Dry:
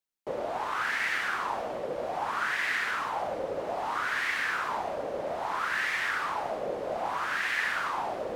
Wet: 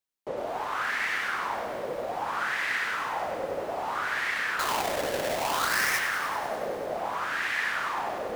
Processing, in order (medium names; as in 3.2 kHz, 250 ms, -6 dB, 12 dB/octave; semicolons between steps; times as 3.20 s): 4.59–5.99 s: square wave that keeps the level; bit-crushed delay 97 ms, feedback 80%, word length 8-bit, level -11 dB